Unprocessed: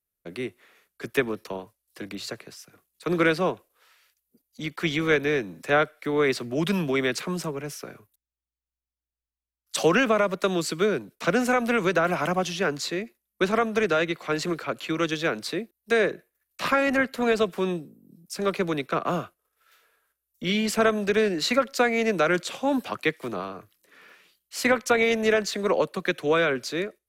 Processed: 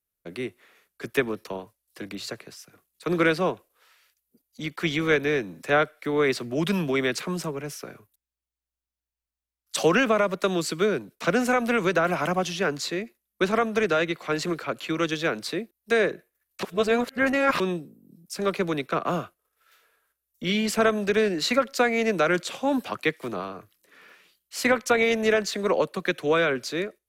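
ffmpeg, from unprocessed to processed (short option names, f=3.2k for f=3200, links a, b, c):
-filter_complex "[0:a]asplit=3[a][b][c];[a]atrim=end=16.632[d];[b]atrim=start=16.628:end=17.602,asetpts=PTS-STARTPTS,areverse[e];[c]atrim=start=17.598[f];[d][e]acrossfade=d=0.004:c1=hsin:c2=hsin[g];[g][f]acrossfade=d=0.004:c1=hsin:c2=hsin"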